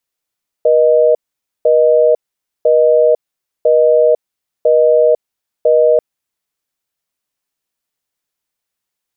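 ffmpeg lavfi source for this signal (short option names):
-f lavfi -i "aevalsrc='0.335*(sin(2*PI*480*t)+sin(2*PI*620*t))*clip(min(mod(t,1),0.5-mod(t,1))/0.005,0,1)':d=5.34:s=44100"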